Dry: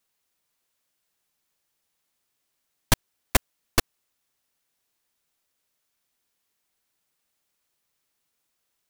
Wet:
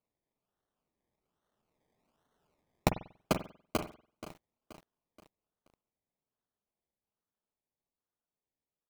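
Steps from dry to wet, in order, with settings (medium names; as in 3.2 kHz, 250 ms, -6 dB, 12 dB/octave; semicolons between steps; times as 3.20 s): Doppler pass-by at 2.35 s, 10 m/s, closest 4.8 m; high-pass 80 Hz 24 dB/octave; treble shelf 2.4 kHz -12 dB; comb 4.7 ms, depth 58%; compression 10:1, threshold -33 dBFS, peak gain reduction 13 dB; decimation with a swept rate 25×, swing 60% 1.2 Hz; reverberation, pre-delay 47 ms, DRR 9.5 dB; bit-crushed delay 478 ms, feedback 55%, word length 9-bit, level -14 dB; trim +7 dB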